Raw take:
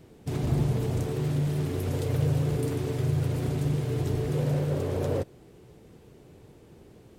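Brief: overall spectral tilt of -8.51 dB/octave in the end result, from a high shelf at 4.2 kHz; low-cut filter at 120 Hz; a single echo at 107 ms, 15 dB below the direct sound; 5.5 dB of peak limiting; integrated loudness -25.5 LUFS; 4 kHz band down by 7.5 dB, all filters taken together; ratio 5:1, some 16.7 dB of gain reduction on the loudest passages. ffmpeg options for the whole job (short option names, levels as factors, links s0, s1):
-af "highpass=120,equalizer=f=4000:t=o:g=-5.5,highshelf=f=4200:g=-8,acompressor=threshold=0.00708:ratio=5,alimiter=level_in=5.31:limit=0.0631:level=0:latency=1,volume=0.188,aecho=1:1:107:0.178,volume=13.3"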